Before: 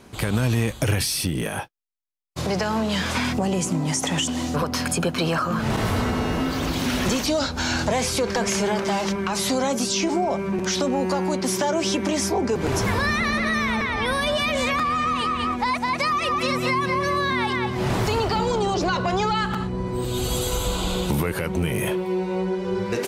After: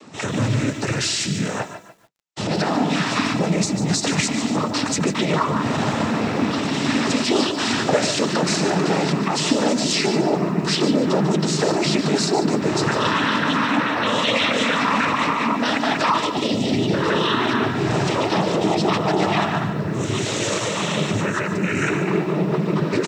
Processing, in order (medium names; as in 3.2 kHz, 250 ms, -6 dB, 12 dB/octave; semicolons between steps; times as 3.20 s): time-frequency box 19.47–22.22 s, 1.3–2.6 kHz +6 dB; formant shift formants -3 st; time-frequency box 16.19–16.93 s, 850–2500 Hz -20 dB; in parallel at -1.5 dB: peak limiter -18.5 dBFS, peak gain reduction 9 dB; on the sum: high-pass 130 Hz; noise-vocoded speech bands 12; on a send: feedback delay 144 ms, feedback 29%, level -13 dB; on the sum: bit-crushed delay 147 ms, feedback 35%, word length 8-bit, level -11.5 dB